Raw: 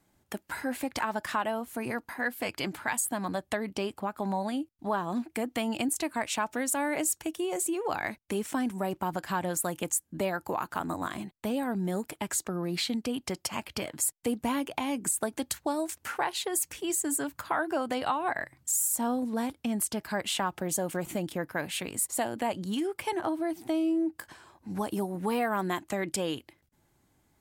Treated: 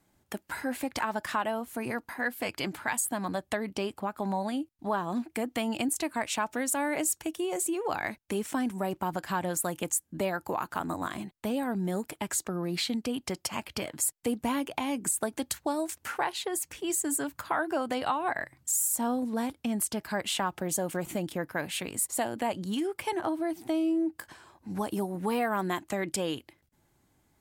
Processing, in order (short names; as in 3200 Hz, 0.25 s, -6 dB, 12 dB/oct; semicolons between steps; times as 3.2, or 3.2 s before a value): 16.32–16.86 high shelf 4700 Hz -5 dB